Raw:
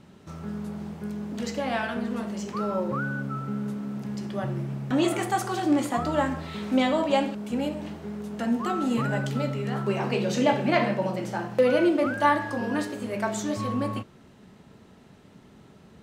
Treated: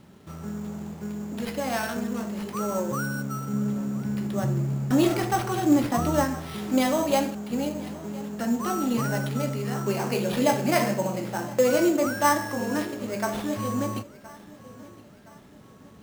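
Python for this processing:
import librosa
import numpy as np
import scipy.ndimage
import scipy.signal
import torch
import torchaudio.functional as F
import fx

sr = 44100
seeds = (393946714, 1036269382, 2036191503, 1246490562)

y = fx.sample_hold(x, sr, seeds[0], rate_hz=7100.0, jitter_pct=0)
y = fx.low_shelf(y, sr, hz=250.0, db=7.0, at=(3.53, 6.24))
y = fx.echo_feedback(y, sr, ms=1018, feedback_pct=45, wet_db=-20.0)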